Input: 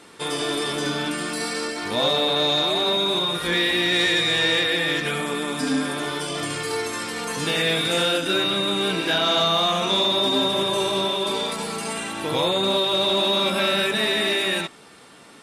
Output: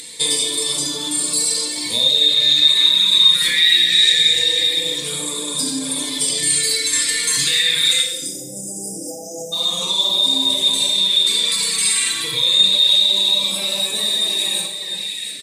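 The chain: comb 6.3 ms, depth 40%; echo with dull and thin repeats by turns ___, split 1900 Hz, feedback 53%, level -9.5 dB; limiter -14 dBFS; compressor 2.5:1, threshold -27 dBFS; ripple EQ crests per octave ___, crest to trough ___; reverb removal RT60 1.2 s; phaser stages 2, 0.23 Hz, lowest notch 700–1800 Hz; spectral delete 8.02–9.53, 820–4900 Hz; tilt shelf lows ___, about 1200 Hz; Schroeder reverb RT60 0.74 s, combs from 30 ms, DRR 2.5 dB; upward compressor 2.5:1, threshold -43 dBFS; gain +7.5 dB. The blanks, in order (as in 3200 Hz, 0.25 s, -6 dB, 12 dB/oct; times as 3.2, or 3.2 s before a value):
0.35 s, 1, 9 dB, -9 dB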